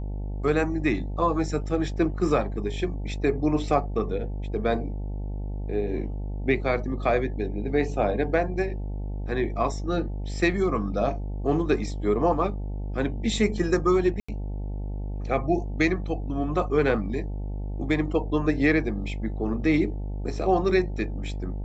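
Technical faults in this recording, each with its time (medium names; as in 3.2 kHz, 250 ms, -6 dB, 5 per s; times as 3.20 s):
buzz 50 Hz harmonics 18 -31 dBFS
14.20–14.29 s: dropout 85 ms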